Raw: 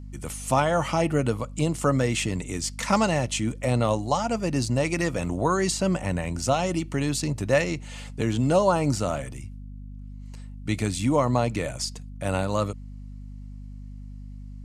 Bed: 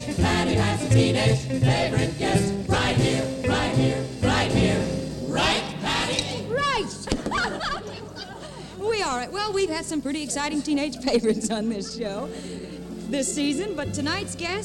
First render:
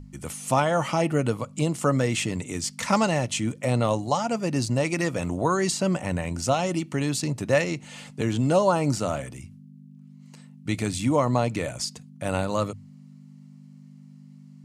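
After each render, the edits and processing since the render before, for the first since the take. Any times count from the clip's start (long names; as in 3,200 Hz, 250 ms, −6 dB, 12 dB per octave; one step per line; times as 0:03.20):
mains-hum notches 50/100 Hz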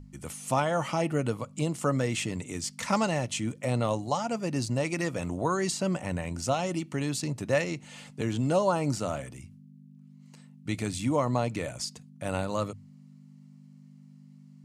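level −4.5 dB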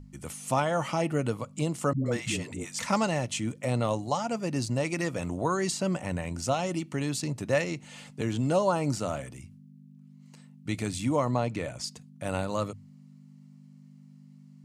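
0:01.93–0:02.79: all-pass dispersion highs, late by 127 ms, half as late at 390 Hz
0:11.31–0:11.84: high-shelf EQ 6,800 Hz −8.5 dB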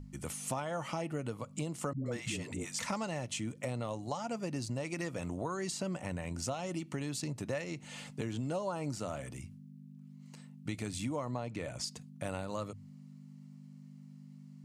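downward compressor 4 to 1, threshold −35 dBFS, peak gain reduction 12.5 dB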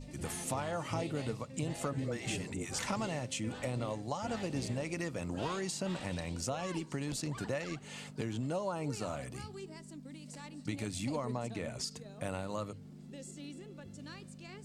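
mix in bed −23.5 dB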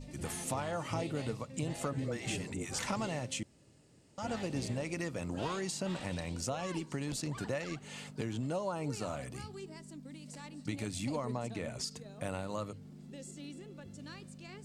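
0:03.43–0:04.18: fill with room tone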